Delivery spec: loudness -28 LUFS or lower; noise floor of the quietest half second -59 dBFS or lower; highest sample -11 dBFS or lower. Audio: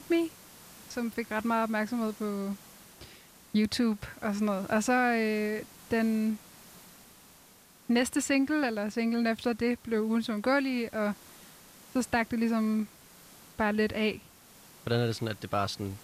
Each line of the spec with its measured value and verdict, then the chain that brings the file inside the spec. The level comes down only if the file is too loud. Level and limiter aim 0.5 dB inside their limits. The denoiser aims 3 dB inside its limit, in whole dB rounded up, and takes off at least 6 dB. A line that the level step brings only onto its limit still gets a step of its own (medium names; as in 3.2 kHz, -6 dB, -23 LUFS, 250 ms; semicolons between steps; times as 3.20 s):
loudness -30.0 LUFS: pass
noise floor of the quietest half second -57 dBFS: fail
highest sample -17.0 dBFS: pass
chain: noise reduction 6 dB, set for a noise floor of -57 dBFS